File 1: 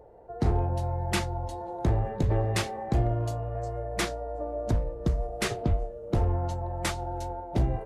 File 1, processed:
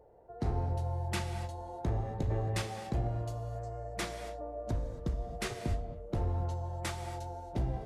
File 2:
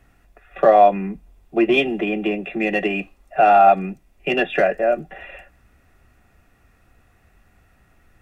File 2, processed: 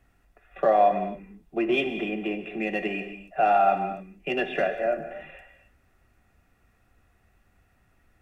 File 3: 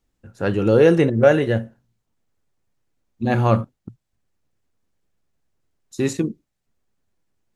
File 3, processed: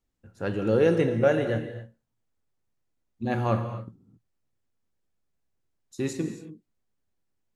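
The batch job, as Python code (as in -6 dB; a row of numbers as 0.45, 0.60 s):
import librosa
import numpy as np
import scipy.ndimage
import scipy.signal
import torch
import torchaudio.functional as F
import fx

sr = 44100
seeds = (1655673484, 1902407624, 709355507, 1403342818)

y = fx.rev_gated(x, sr, seeds[0], gate_ms=300, shape='flat', drr_db=7.5)
y = F.gain(torch.from_numpy(y), -8.0).numpy()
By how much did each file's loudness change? -7.0, -7.5, -7.5 LU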